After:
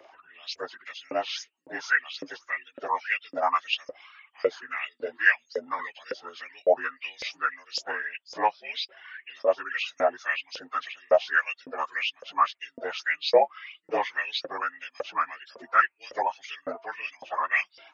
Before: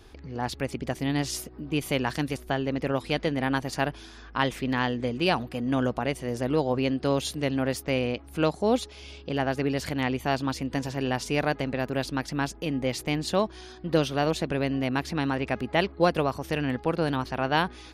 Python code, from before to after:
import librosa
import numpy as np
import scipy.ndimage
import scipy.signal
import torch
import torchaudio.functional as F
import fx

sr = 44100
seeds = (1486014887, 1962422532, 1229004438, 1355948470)

y = fx.partial_stretch(x, sr, pct=82)
y = fx.dereverb_blind(y, sr, rt60_s=0.76)
y = fx.filter_lfo_highpass(y, sr, shape='saw_up', hz=1.8, low_hz=500.0, high_hz=5300.0, q=7.4)
y = fx.band_squash(y, sr, depth_pct=70, at=(5.79, 6.29))